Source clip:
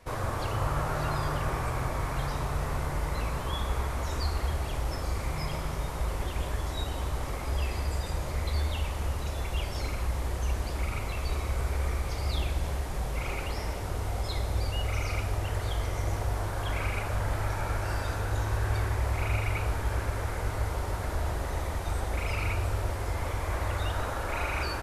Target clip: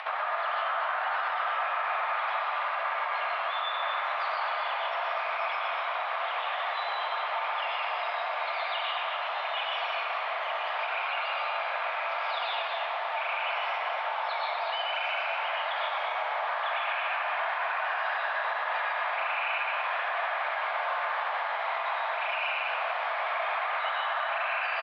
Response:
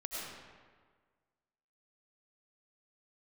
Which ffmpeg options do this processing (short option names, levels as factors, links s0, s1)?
-filter_complex "[1:a]atrim=start_sample=2205,atrim=end_sample=6174,asetrate=35721,aresample=44100[s0];[0:a][s0]afir=irnorm=-1:irlink=0,highpass=f=560:t=q:w=0.5412,highpass=f=560:t=q:w=1.307,lowpass=f=3300:t=q:w=0.5176,lowpass=f=3300:t=q:w=0.7071,lowpass=f=3300:t=q:w=1.932,afreqshift=140,alimiter=level_in=2.11:limit=0.0631:level=0:latency=1:release=57,volume=0.473,aecho=1:1:240:0.501,acompressor=mode=upward:threshold=0.0178:ratio=2.5,volume=2.51"